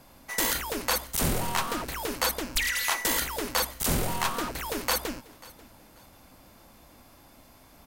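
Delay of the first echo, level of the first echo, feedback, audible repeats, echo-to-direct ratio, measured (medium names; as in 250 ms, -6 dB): 540 ms, -22.0 dB, 28%, 2, -21.5 dB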